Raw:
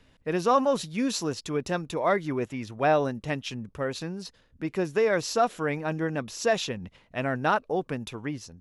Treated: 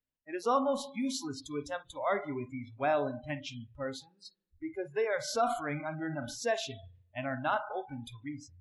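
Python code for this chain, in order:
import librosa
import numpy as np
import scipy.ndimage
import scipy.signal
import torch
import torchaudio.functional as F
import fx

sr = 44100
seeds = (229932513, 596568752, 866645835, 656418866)

y = fx.rev_spring(x, sr, rt60_s=1.0, pass_ms=(34, 56), chirp_ms=20, drr_db=8.5)
y = fx.transient(y, sr, attack_db=1, sustain_db=7, at=(5.27, 6.46), fade=0.02)
y = fx.noise_reduce_blind(y, sr, reduce_db=29)
y = y * librosa.db_to_amplitude(-6.5)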